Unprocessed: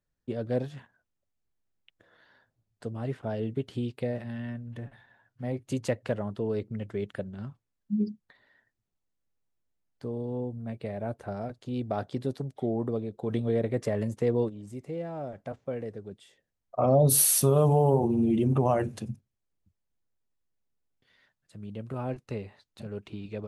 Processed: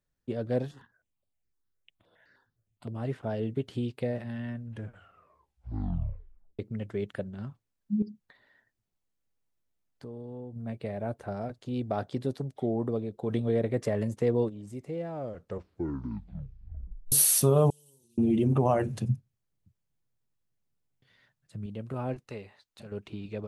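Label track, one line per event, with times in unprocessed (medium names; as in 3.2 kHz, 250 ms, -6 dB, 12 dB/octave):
0.710000	2.930000	stepped phaser 9.7 Hz 620–6400 Hz
4.660000	4.660000	tape stop 1.93 s
8.020000	10.560000	compression 2:1, threshold -43 dBFS
15.100000	15.100000	tape stop 2.02 s
17.700000	18.180000	inverse Chebyshev high-pass stop band from 2 kHz
18.890000	21.660000	peaking EQ 130 Hz +11 dB
22.270000	22.920000	bass shelf 470 Hz -8.5 dB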